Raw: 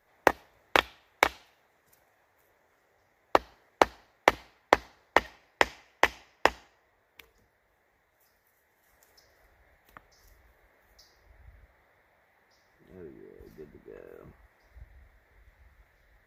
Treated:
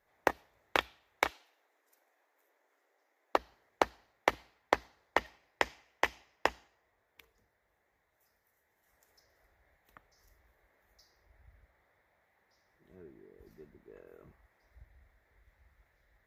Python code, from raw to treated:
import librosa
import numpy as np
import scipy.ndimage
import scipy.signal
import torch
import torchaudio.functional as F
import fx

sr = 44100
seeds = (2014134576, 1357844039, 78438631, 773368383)

y = fx.brickwall_highpass(x, sr, low_hz=250.0, at=(1.29, 3.36), fade=0.02)
y = y * librosa.db_to_amplitude(-7.0)